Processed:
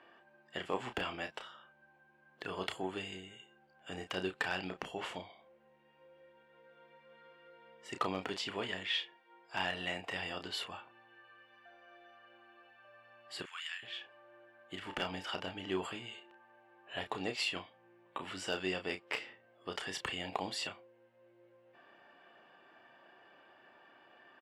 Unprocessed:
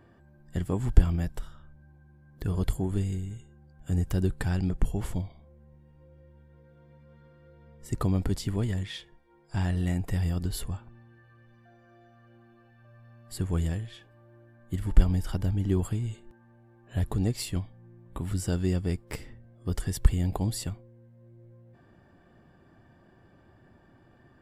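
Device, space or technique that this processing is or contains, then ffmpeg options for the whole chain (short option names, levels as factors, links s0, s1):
megaphone: -filter_complex "[0:a]asettb=1/sr,asplit=3[s0][s1][s2];[s0]atrim=end=13.424[s3];[s1]atrim=start=13.42:end=13.83,asetpts=PTS-STARTPTS,afade=t=in:d=0.004:c=qsin,afade=t=out:st=0.406:d=0.004:c=qsin,highpass=f=1400:w=0.5412,highpass=f=1400:w=1.3066[s4];[s2]atrim=start=13.826[s5];[s3][s4]acrossfade=d=0.004:c1=hsin:c2=qsin[s6];[s6][s5]acrossfade=d=0.004:c1=qsin:c2=hsin,highpass=650,lowpass=3800,equalizer=f=2800:t=o:w=0.44:g=8.5,asoftclip=type=hard:threshold=0.0473,asplit=2[s7][s8];[s8]adelay=32,volume=0.398[s9];[s7][s9]amix=inputs=2:normalize=0,volume=1.5"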